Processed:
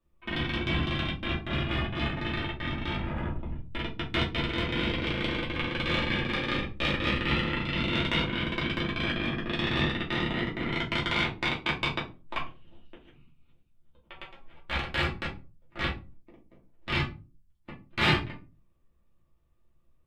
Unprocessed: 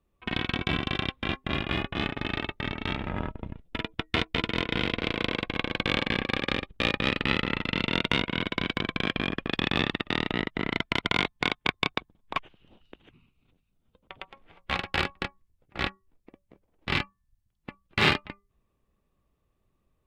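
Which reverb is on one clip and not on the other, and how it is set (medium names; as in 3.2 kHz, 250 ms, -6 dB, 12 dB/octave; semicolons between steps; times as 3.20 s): simulated room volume 120 m³, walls furnished, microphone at 2.7 m; trim -8 dB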